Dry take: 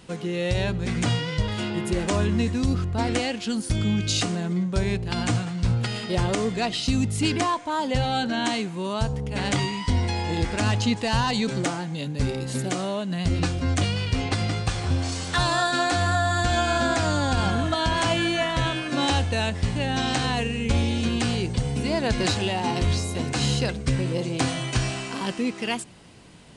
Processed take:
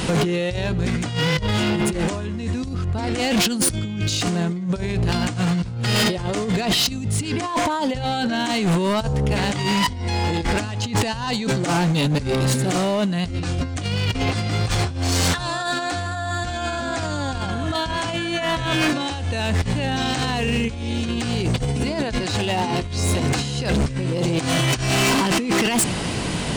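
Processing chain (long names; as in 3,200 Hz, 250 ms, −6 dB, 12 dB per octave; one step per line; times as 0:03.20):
in parallel at +2.5 dB: brickwall limiter −23.5 dBFS, peak gain reduction 11 dB
on the sum: compressor whose output falls as the input rises −27 dBFS, ratio −0.5
gain into a clipping stage and back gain 25 dB
level +9 dB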